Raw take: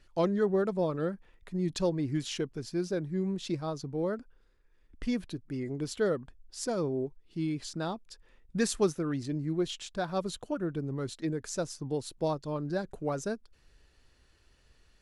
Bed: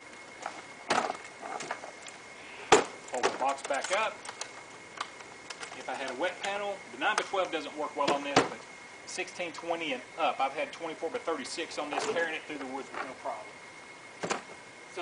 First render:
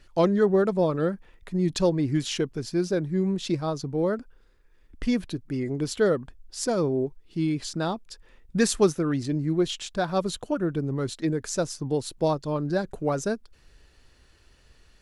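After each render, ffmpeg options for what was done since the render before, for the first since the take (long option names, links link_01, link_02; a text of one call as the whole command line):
ffmpeg -i in.wav -af "volume=6.5dB" out.wav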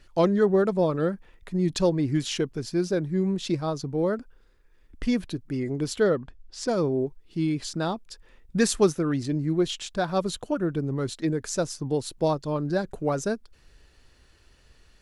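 ffmpeg -i in.wav -filter_complex "[0:a]asettb=1/sr,asplit=3[link_01][link_02][link_03];[link_01]atrim=end=6.034[link_04];[link_02]atrim=start=6.03:end=6.68,asetpts=PTS-STARTPTS,afade=type=in:duration=0.004:curve=qsin,afade=type=out:start_time=0.646:duration=0.004:curve=qsin,lowpass=5600[link_05];[link_03]atrim=start=6.676[link_06];[link_04][link_05]acrossfade=duration=0.004:curve1=hsin:curve2=qsin[link_07];[link_07][link_06]acrossfade=duration=0.004:curve1=qsin:curve2=hsin" out.wav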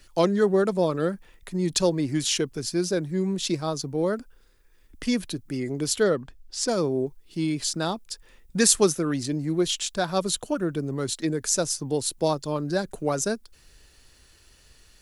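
ffmpeg -i in.wav -filter_complex "[0:a]acrossover=split=160[link_01][link_02];[link_01]asoftclip=type=tanh:threshold=-37dB[link_03];[link_02]crystalizer=i=2.5:c=0[link_04];[link_03][link_04]amix=inputs=2:normalize=0" out.wav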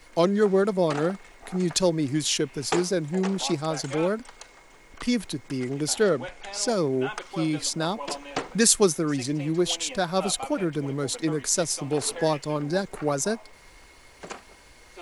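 ffmpeg -i in.wav -i bed.wav -filter_complex "[1:a]volume=-6dB[link_01];[0:a][link_01]amix=inputs=2:normalize=0" out.wav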